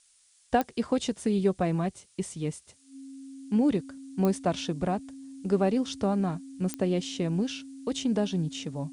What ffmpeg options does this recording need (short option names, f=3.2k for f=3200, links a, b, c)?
-af "adeclick=t=4,bandreject=f=270:w=30,afftdn=nr=12:nf=-61"